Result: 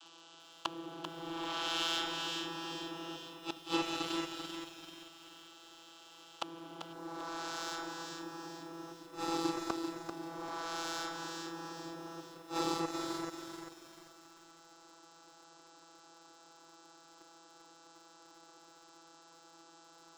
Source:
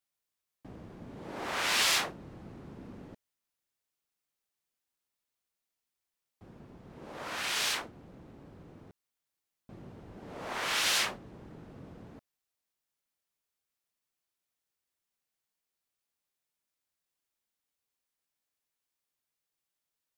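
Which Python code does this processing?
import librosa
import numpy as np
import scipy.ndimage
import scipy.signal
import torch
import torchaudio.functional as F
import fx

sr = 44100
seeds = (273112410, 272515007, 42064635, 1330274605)

y = fx.bin_compress(x, sr, power=0.6)
y = fx.low_shelf(y, sr, hz=130.0, db=-4.5)
y = fx.fixed_phaser(y, sr, hz=560.0, stages=6)
y = fx.vocoder(y, sr, bands=32, carrier='saw', carrier_hz=166.0)
y = fx.echo_alternate(y, sr, ms=218, hz=1800.0, feedback_pct=70, wet_db=-5.5)
y = fx.leveller(y, sr, passes=2)
y = fx.peak_eq(y, sr, hz=3000.0, db=fx.steps((0.0, 12.0), (6.93, -3.5)), octaves=0.6)
y = fx.gate_flip(y, sr, shuts_db=-33.0, range_db=-25)
y = fx.echo_crushed(y, sr, ms=391, feedback_pct=35, bits=12, wet_db=-7.0)
y = y * 10.0 ** (14.5 / 20.0)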